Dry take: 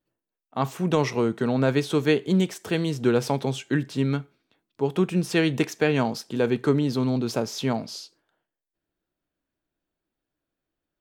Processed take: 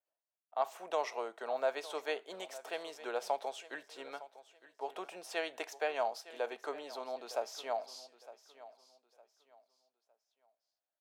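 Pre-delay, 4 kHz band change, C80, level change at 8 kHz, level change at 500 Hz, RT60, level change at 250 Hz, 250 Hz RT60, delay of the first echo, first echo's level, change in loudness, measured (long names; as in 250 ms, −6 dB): no reverb audible, −12.5 dB, no reverb audible, −12.5 dB, −12.0 dB, no reverb audible, −30.0 dB, no reverb audible, 909 ms, −17.0 dB, −14.5 dB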